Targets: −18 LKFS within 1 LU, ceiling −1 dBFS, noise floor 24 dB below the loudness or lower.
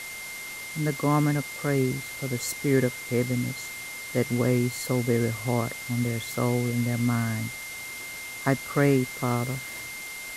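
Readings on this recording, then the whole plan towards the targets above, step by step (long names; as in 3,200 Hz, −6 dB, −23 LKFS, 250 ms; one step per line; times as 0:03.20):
interfering tone 2,100 Hz; level of the tone −37 dBFS; background noise floor −38 dBFS; target noise floor −52 dBFS; integrated loudness −27.5 LKFS; sample peak −9.0 dBFS; target loudness −18.0 LKFS
→ notch filter 2,100 Hz, Q 30
broadband denoise 14 dB, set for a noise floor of −38 dBFS
level +9.5 dB
brickwall limiter −1 dBFS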